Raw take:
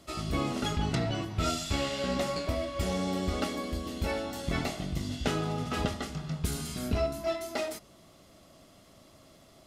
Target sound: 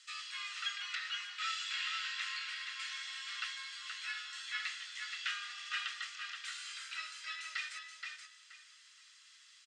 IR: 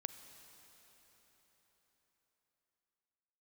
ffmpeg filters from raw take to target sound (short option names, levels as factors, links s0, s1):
-filter_complex "[0:a]asuperpass=centerf=3800:order=12:qfactor=0.53,bandreject=f=2200:w=25,afreqshift=-48,asplit=2[s0][s1];[s1]adelay=475,lowpass=f=3100:p=1,volume=0.631,asplit=2[s2][s3];[s3]adelay=475,lowpass=f=3100:p=1,volume=0.27,asplit=2[s4][s5];[s5]adelay=475,lowpass=f=3100:p=1,volume=0.27,asplit=2[s6][s7];[s7]adelay=475,lowpass=f=3100:p=1,volume=0.27[s8];[s2][s4][s6][s8]amix=inputs=4:normalize=0[s9];[s0][s9]amix=inputs=2:normalize=0,acrossover=split=3600[s10][s11];[s11]acompressor=threshold=0.00224:ratio=4:attack=1:release=60[s12];[s10][s12]amix=inputs=2:normalize=0,volume=1.33"